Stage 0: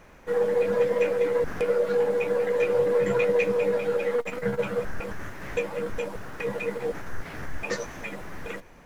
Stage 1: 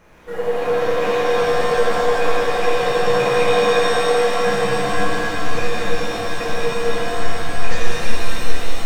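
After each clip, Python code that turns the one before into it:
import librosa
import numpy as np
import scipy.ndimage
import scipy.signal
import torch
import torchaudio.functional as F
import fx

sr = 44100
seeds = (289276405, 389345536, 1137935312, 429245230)

y = fx.rev_shimmer(x, sr, seeds[0], rt60_s=3.4, semitones=7, shimmer_db=-2, drr_db=-6.5)
y = F.gain(torch.from_numpy(y), -1.5).numpy()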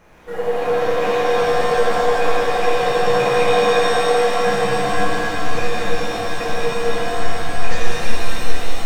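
y = fx.peak_eq(x, sr, hz=760.0, db=4.0, octaves=0.23)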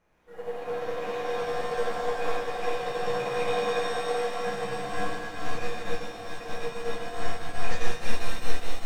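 y = fx.upward_expand(x, sr, threshold_db=-29.0, expansion=1.5)
y = F.gain(torch.from_numpy(y), -6.5).numpy()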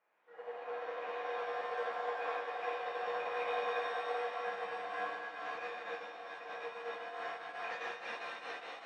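y = fx.bandpass_edges(x, sr, low_hz=630.0, high_hz=2700.0)
y = F.gain(torch.from_numpy(y), -4.5).numpy()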